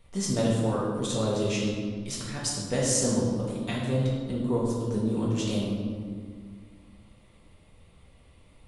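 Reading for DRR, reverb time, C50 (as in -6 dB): -6.0 dB, 1.8 s, 0.0 dB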